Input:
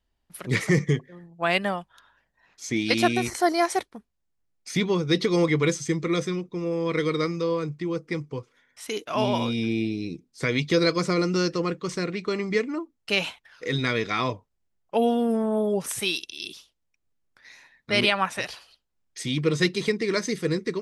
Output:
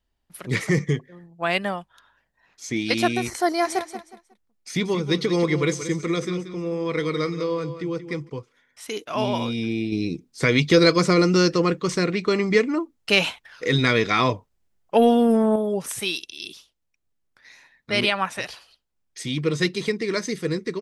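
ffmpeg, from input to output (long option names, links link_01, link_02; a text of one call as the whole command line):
ffmpeg -i in.wav -filter_complex "[0:a]asplit=3[link_01][link_02][link_03];[link_01]afade=type=out:start_time=3.64:duration=0.02[link_04];[link_02]aecho=1:1:182|364|546:0.282|0.0761|0.0205,afade=type=in:start_time=3.64:duration=0.02,afade=type=out:start_time=8.28:duration=0.02[link_05];[link_03]afade=type=in:start_time=8.28:duration=0.02[link_06];[link_04][link_05][link_06]amix=inputs=3:normalize=0,asettb=1/sr,asplit=3[link_07][link_08][link_09];[link_07]atrim=end=9.924[link_10];[link_08]atrim=start=9.92:end=15.56,asetpts=PTS-STARTPTS,afade=type=in:duration=0.004:curve=qsin,afade=type=out:start_time=5.636:duration=0.004:curve=qsin,acontrast=55[link_11];[link_09]atrim=start=15.556[link_12];[link_10][link_11]acrossfade=duration=0.004:curve1=hsin:curve2=qsin[link_13];[link_13][link_12]acrossfade=duration=0.004:curve1=qsin:curve2=hsin" out.wav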